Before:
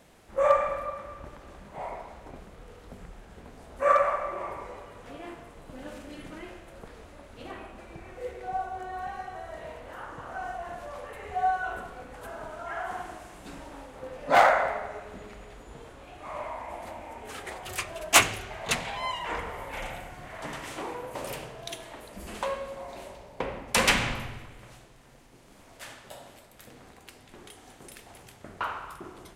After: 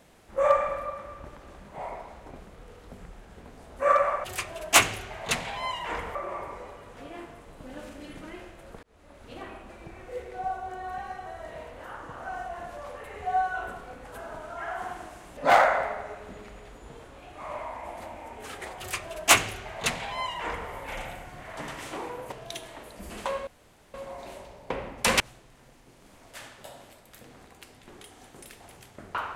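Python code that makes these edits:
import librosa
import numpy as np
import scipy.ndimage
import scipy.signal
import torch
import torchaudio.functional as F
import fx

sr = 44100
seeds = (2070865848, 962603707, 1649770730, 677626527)

y = fx.edit(x, sr, fx.fade_in_span(start_s=6.92, length_s=0.42),
    fx.cut(start_s=13.46, length_s=0.76),
    fx.duplicate(start_s=17.64, length_s=1.91, to_s=4.24),
    fx.cut(start_s=21.17, length_s=0.32),
    fx.insert_room_tone(at_s=22.64, length_s=0.47),
    fx.cut(start_s=23.9, length_s=0.76), tone=tone)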